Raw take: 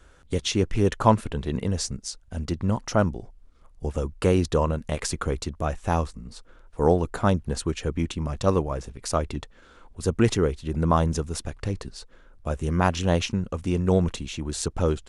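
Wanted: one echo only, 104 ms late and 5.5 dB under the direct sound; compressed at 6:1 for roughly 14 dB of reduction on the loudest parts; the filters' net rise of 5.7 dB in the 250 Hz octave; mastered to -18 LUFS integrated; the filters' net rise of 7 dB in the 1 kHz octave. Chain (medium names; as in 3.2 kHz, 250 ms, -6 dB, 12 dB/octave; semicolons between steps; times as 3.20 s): peaking EQ 250 Hz +7.5 dB; peaking EQ 1 kHz +8 dB; compression 6:1, threshold -23 dBFS; delay 104 ms -5.5 dB; trim +10.5 dB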